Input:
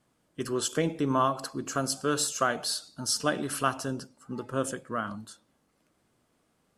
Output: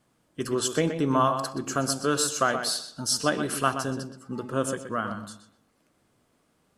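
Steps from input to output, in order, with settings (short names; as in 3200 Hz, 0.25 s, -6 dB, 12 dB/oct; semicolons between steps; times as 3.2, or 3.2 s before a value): darkening echo 0.124 s, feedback 26%, low-pass 4300 Hz, level -8.5 dB; gain +2.5 dB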